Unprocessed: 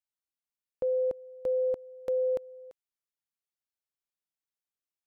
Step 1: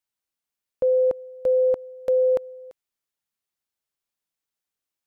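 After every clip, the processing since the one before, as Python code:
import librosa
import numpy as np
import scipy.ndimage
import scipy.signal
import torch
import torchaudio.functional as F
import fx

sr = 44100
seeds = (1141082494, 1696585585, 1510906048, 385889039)

y = fx.dynamic_eq(x, sr, hz=1100.0, q=0.7, threshold_db=-44.0, ratio=4.0, max_db=6)
y = y * 10.0 ** (6.0 / 20.0)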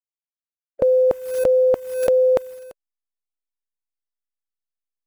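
y = fx.delta_hold(x, sr, step_db=-50.5)
y = fx.hpss(y, sr, part='percussive', gain_db=7)
y = fx.pre_swell(y, sr, db_per_s=73.0)
y = y * 10.0 ** (3.5 / 20.0)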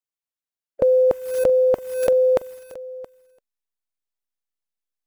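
y = x + 10.0 ** (-19.0 / 20.0) * np.pad(x, (int(673 * sr / 1000.0), 0))[:len(x)]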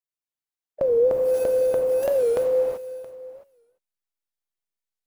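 y = fx.rev_gated(x, sr, seeds[0], gate_ms=410, shape='flat', drr_db=-1.5)
y = fx.record_warp(y, sr, rpm=45.0, depth_cents=160.0)
y = y * 10.0 ** (-6.0 / 20.0)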